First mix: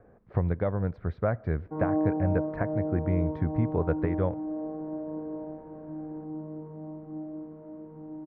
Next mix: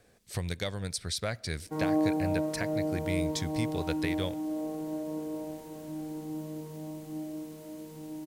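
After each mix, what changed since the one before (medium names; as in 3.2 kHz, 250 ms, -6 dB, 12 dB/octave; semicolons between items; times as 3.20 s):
speech -7.5 dB; master: remove low-pass 1.3 kHz 24 dB/octave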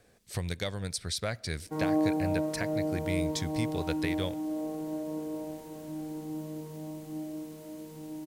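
no change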